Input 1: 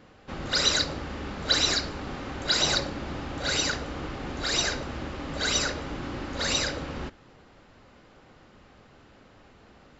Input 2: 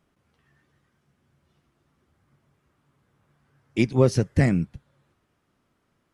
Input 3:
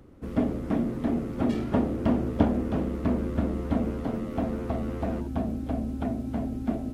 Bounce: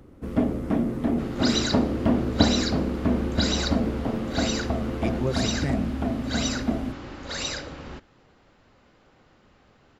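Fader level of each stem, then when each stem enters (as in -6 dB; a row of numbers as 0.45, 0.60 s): -4.0, -9.0, +2.5 dB; 0.90, 1.25, 0.00 s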